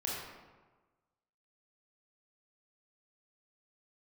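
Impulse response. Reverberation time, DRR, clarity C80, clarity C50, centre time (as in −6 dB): 1.3 s, −5.0 dB, 1.5 dB, −1.5 dB, 86 ms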